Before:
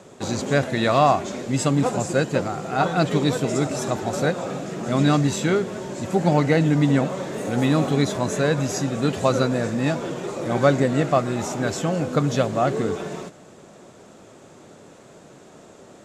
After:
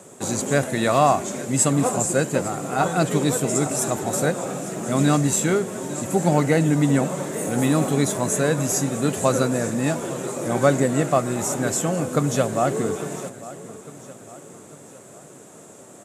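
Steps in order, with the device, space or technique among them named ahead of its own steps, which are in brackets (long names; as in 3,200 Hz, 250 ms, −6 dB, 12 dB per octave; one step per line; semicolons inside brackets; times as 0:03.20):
budget condenser microphone (high-pass filter 95 Hz; high shelf with overshoot 6,500 Hz +12 dB, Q 1.5)
repeating echo 852 ms, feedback 49%, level −17 dB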